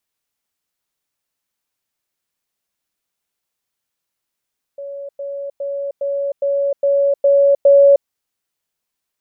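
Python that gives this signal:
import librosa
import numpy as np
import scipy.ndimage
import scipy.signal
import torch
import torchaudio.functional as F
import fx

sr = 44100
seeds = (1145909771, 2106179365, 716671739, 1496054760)

y = fx.level_ladder(sr, hz=561.0, from_db=-26.5, step_db=3.0, steps=8, dwell_s=0.31, gap_s=0.1)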